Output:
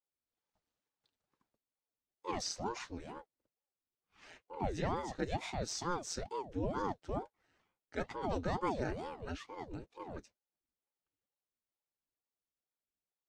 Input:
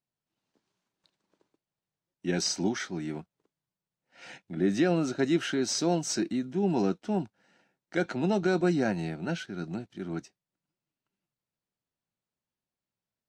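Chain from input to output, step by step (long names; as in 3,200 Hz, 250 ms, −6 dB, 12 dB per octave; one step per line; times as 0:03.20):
notch comb filter 310 Hz
ring modulator whose carrier an LFO sweeps 400 Hz, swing 80%, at 2.2 Hz
level −6 dB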